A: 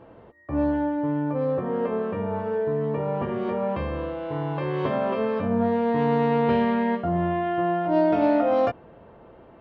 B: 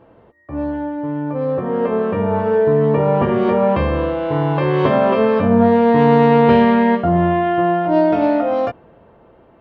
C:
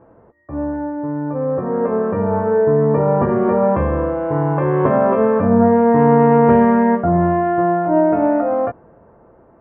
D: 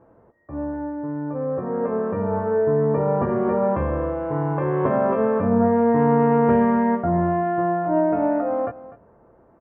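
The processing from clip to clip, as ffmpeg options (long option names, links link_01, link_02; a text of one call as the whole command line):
ffmpeg -i in.wav -af "dynaudnorm=framelen=220:gausssize=17:maxgain=13.5dB" out.wav
ffmpeg -i in.wav -af "lowpass=frequency=1700:width=0.5412,lowpass=frequency=1700:width=1.3066" out.wav
ffmpeg -i in.wav -af "aecho=1:1:248:0.141,volume=-5.5dB" out.wav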